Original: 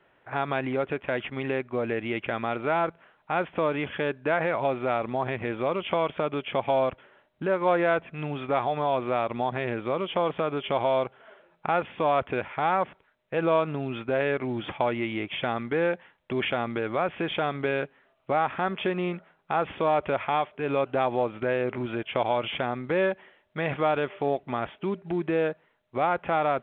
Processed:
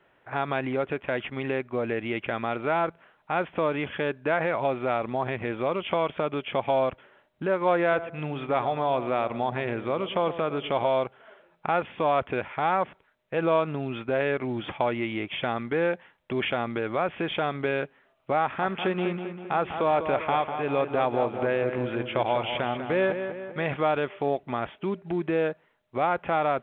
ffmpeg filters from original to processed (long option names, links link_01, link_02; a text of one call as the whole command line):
ffmpeg -i in.wav -filter_complex "[0:a]asettb=1/sr,asplit=3[link_01][link_02][link_03];[link_01]atrim=end=7.814[link_04];[link_02]atrim=start=7.81:end=10.88,asetpts=PTS-STARTPTS,afade=type=in:duration=0.004:curve=qsin,afade=type=out:start_time=3.066:duration=0.004:curve=qsin,asplit=2[link_05][link_06];[link_06]adelay=111,lowpass=frequency=1000:poles=1,volume=-11.5dB,asplit=2[link_07][link_08];[link_08]adelay=111,lowpass=frequency=1000:poles=1,volume=0.38,asplit=2[link_09][link_10];[link_10]adelay=111,lowpass=frequency=1000:poles=1,volume=0.38,asplit=2[link_11][link_12];[link_12]adelay=111,lowpass=frequency=1000:poles=1,volume=0.38[link_13];[link_05][link_07][link_09][link_11][link_13]amix=inputs=5:normalize=0,atrim=end_sample=135387[link_14];[link_03]atrim=start=10.876[link_15];[link_04][link_14]acrossfade=duration=0.004:curve1=hsin:curve2=qsin[link_16];[link_16][link_15]acrossfade=duration=0.004:curve1=qsin:curve2=hsin,asettb=1/sr,asplit=3[link_17][link_18][link_19];[link_17]atrim=end=18.424[link_20];[link_18]atrim=start=18.42:end=23.65,asetpts=PTS-STARTPTS,afade=type=in:duration=0.004:curve=qsin,afade=type=out:start_time=5.226:duration=0.004:curve=qsin,asplit=2[link_21][link_22];[link_22]adelay=197,lowpass=frequency=3500:poles=1,volume=-8dB,asplit=2[link_23][link_24];[link_24]adelay=197,lowpass=frequency=3500:poles=1,volume=0.53,asplit=2[link_25][link_26];[link_26]adelay=197,lowpass=frequency=3500:poles=1,volume=0.53,asplit=2[link_27][link_28];[link_28]adelay=197,lowpass=frequency=3500:poles=1,volume=0.53,asplit=2[link_29][link_30];[link_30]adelay=197,lowpass=frequency=3500:poles=1,volume=0.53,asplit=2[link_31][link_32];[link_32]adelay=197,lowpass=frequency=3500:poles=1,volume=0.53[link_33];[link_21][link_23][link_25][link_27][link_29][link_31][link_33]amix=inputs=7:normalize=0,atrim=end_sample=230643[link_34];[link_19]atrim=start=23.646[link_35];[link_20][link_34]acrossfade=duration=0.004:curve1=hsin:curve2=qsin[link_36];[link_36][link_35]acrossfade=duration=0.004:curve1=qsin:curve2=hsin" out.wav